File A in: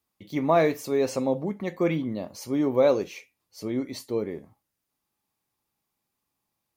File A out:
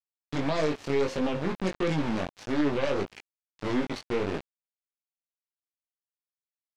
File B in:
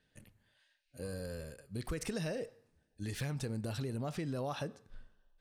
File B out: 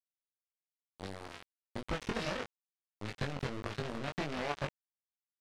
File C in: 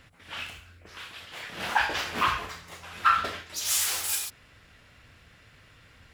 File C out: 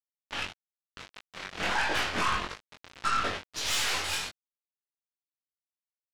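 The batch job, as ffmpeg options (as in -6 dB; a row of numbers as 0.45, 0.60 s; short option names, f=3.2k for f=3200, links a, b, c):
-af "aeval=exprs='val(0)*gte(abs(val(0)),0.02)':c=same,lowpass=4k,alimiter=limit=-21dB:level=0:latency=1:release=149,aeval=exprs='0.0891*(cos(1*acos(clip(val(0)/0.0891,-1,1)))-cos(1*PI/2))+0.0158*(cos(5*acos(clip(val(0)/0.0891,-1,1)))-cos(5*PI/2))+0.0141*(cos(6*acos(clip(val(0)/0.0891,-1,1)))-cos(6*PI/2))':c=same,flanger=delay=19.5:depth=2.6:speed=1.6,volume=4dB"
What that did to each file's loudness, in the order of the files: -3.5, +0.5, -2.5 LU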